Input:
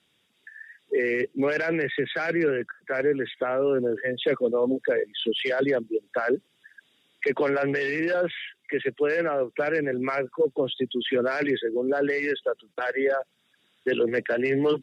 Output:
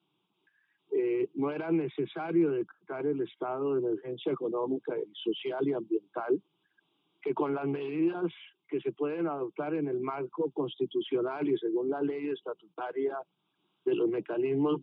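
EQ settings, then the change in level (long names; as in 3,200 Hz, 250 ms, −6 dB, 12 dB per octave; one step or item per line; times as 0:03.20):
loudspeaker in its box 210–3,100 Hz, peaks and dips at 430 Hz −9 dB, 690 Hz −8 dB, 1,400 Hz −5 dB, 2,100 Hz −5 dB
high-shelf EQ 2,200 Hz −12 dB
phaser with its sweep stopped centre 360 Hz, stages 8
+4.5 dB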